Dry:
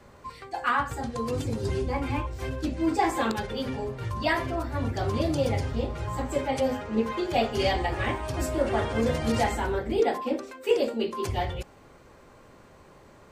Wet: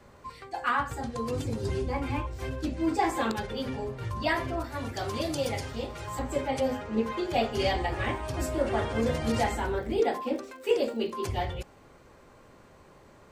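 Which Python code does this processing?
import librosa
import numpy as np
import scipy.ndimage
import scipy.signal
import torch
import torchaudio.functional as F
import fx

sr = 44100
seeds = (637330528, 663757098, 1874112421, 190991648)

y = fx.tilt_eq(x, sr, slope=2.0, at=(4.64, 6.19))
y = fx.dmg_crackle(y, sr, seeds[0], per_s=150.0, level_db=-43.0, at=(9.76, 11.12), fade=0.02)
y = F.gain(torch.from_numpy(y), -2.0).numpy()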